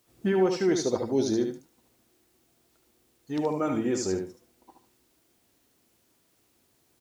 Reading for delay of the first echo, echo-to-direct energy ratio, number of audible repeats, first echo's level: 74 ms, -6.0 dB, 2, -6.0 dB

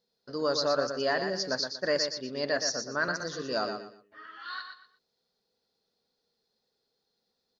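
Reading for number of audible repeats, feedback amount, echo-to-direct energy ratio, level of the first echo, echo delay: 3, 27%, -6.5 dB, -7.0 dB, 120 ms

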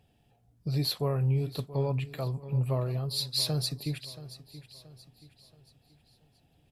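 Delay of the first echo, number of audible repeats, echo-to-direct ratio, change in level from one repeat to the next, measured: 678 ms, 3, -14.5 dB, -8.0 dB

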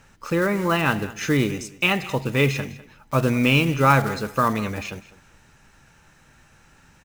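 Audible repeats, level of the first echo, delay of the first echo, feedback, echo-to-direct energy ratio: 2, -18.0 dB, 201 ms, 18%, -18.0 dB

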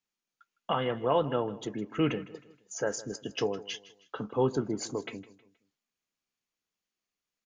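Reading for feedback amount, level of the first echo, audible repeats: 40%, -18.0 dB, 3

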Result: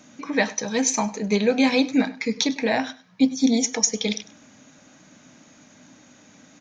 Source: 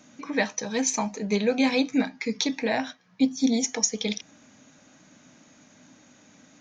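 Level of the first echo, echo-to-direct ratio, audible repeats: -18.5 dB, -18.5 dB, 2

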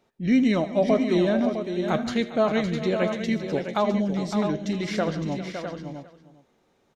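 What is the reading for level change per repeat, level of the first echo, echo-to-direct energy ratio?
no regular repeats, -18.0 dB, -5.0 dB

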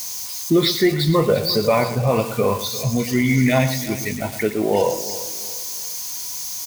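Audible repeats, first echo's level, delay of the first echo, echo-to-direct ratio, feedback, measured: 6, -12.0 dB, 114 ms, -10.0 dB, no regular repeats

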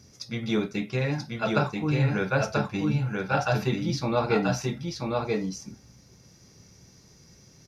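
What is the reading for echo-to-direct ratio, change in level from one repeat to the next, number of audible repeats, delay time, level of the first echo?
-3.0 dB, no regular repeats, 1, 985 ms, -3.0 dB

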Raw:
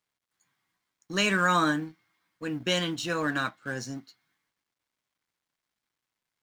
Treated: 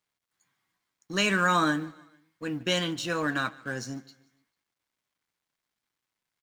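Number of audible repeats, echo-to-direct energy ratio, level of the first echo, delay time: 2, -22.0 dB, -23.0 dB, 148 ms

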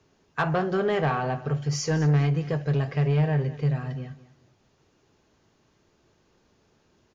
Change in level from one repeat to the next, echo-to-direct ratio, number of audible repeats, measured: -12.0 dB, -17.0 dB, 2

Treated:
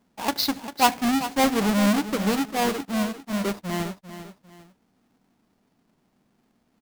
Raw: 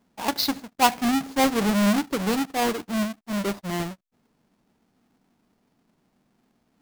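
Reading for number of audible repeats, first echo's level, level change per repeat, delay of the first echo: 2, -12.0 dB, -9.5 dB, 397 ms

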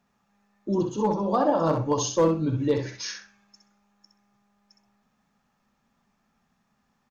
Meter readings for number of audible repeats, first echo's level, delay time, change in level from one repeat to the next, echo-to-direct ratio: 2, -6.5 dB, 64 ms, -15.5 dB, -6.5 dB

